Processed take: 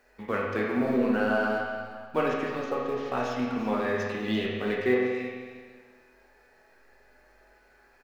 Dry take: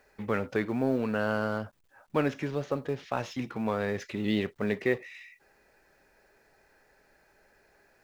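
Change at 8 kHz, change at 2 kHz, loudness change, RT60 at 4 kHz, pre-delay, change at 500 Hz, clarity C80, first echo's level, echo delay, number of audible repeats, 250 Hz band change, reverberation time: no reading, +4.5 dB, +2.5 dB, 1.6 s, 8 ms, +3.5 dB, 2.0 dB, -13.0 dB, 343 ms, 1, +2.5 dB, 1.6 s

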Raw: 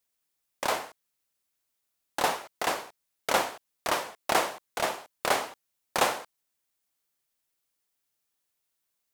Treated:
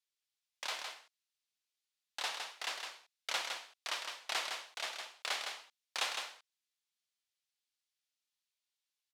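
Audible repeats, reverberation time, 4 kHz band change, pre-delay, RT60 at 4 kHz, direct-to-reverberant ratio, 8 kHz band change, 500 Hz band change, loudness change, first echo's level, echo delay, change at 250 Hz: 1, no reverb, -3.0 dB, no reverb, no reverb, no reverb, -8.5 dB, -19.5 dB, -9.5 dB, -5.5 dB, 160 ms, -25.5 dB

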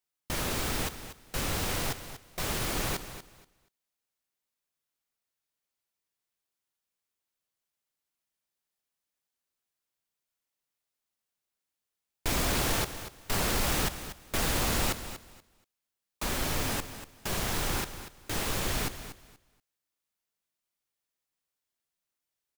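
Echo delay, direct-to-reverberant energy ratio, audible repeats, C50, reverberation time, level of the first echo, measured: 239 ms, no reverb, 2, no reverb, no reverb, -12.0 dB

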